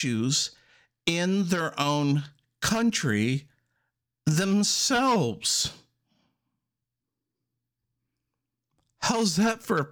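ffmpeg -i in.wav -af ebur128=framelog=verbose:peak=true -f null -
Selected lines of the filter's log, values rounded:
Integrated loudness:
  I:         -25.5 LUFS
  Threshold: -35.9 LUFS
Loudness range:
  LRA:         8.0 LU
  Threshold: -47.5 LUFS
  LRA low:   -33.6 LUFS
  LRA high:  -25.6 LUFS
True peak:
  Peak:      -12.3 dBFS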